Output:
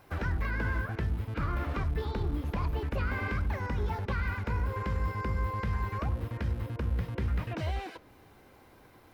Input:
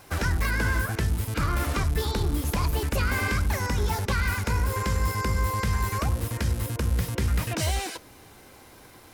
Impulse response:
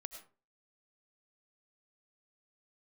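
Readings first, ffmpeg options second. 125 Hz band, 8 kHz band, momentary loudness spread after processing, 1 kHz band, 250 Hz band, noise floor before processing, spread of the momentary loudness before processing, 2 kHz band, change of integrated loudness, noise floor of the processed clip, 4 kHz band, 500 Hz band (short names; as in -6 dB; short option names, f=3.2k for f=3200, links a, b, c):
-5.5 dB, under -25 dB, 2 LU, -6.5 dB, -5.5 dB, -50 dBFS, 3 LU, -8.0 dB, -6.5 dB, -57 dBFS, -14.5 dB, -5.5 dB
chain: -filter_complex "[0:a]equalizer=f=8.2k:t=o:w=2.1:g=-12.5,acrossover=split=4500[a][b];[b]acompressor=threshold=-58dB:ratio=6[c];[a][c]amix=inputs=2:normalize=0,volume=-5.5dB"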